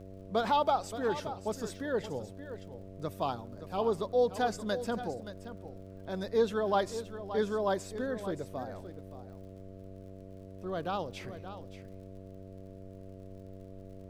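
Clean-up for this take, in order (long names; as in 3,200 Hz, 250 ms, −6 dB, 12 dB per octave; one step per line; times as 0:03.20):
click removal
hum removal 95.6 Hz, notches 7
noise reduction from a noise print 30 dB
echo removal 574 ms −12 dB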